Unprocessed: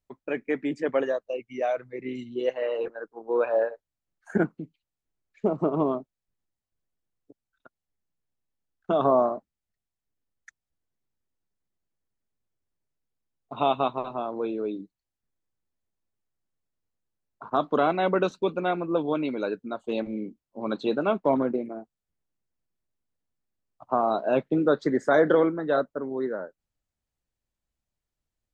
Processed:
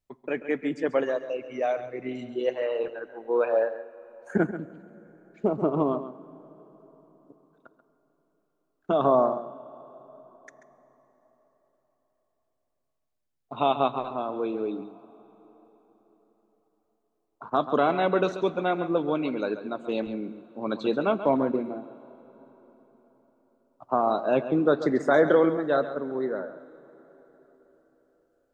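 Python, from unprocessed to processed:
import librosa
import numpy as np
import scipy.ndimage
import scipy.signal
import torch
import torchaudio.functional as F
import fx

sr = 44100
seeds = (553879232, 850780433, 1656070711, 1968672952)

p1 = x + fx.echo_single(x, sr, ms=136, db=-12.0, dry=0)
y = fx.rev_plate(p1, sr, seeds[0], rt60_s=4.5, hf_ratio=0.7, predelay_ms=0, drr_db=17.5)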